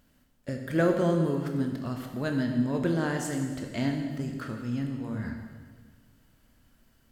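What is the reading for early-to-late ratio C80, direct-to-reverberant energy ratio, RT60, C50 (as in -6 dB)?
6.0 dB, 3.0 dB, 1.6 s, 4.5 dB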